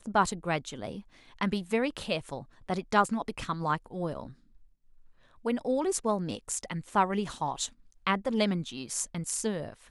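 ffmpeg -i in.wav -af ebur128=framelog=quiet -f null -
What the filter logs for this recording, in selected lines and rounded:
Integrated loudness:
  I:         -31.2 LUFS
  Threshold: -41.7 LUFS
Loudness range:
  LRA:         2.6 LU
  Threshold: -51.9 LUFS
  LRA low:   -33.4 LUFS
  LRA high:  -30.8 LUFS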